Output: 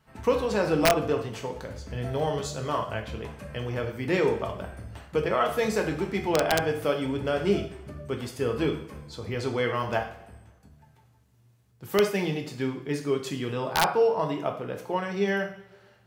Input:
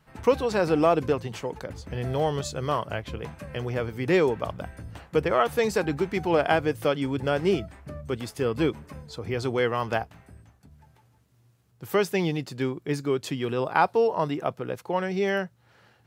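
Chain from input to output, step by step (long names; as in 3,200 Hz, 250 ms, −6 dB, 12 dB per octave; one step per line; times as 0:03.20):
coupled-rooms reverb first 0.53 s, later 1.5 s, DRR 2.5 dB
wrap-around overflow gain 8.5 dB
level −3 dB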